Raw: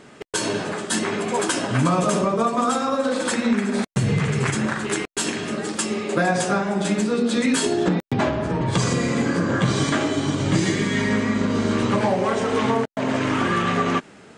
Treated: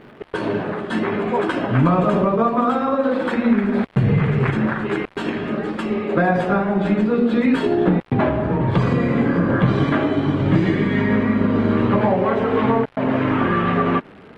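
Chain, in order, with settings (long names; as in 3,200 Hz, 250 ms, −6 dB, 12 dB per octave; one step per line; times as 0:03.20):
surface crackle 220 per second −29 dBFS
high-frequency loss of the air 490 metres
level +4.5 dB
Opus 24 kbit/s 48,000 Hz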